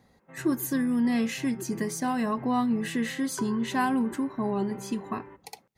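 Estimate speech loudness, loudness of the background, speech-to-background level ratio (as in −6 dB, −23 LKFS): −28.5 LKFS, −44.0 LKFS, 15.5 dB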